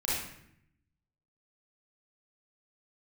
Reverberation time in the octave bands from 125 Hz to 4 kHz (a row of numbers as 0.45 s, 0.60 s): 1.2 s, 1.0 s, 0.75 s, 0.70 s, 0.75 s, 0.55 s